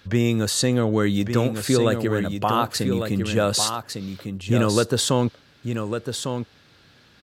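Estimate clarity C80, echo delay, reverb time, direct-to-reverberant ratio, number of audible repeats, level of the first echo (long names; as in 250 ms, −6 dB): no reverb audible, 1,152 ms, no reverb audible, no reverb audible, 1, −7.0 dB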